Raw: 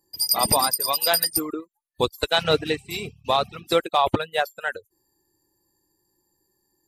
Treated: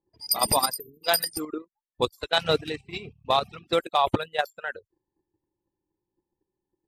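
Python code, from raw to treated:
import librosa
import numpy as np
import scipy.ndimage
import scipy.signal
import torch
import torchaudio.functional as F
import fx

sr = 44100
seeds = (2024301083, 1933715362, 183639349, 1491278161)

y = fx.level_steps(x, sr, step_db=10)
y = fx.spec_erase(y, sr, start_s=0.8, length_s=0.24, low_hz=460.0, high_hz=10000.0)
y = fx.env_lowpass(y, sr, base_hz=910.0, full_db=-22.5)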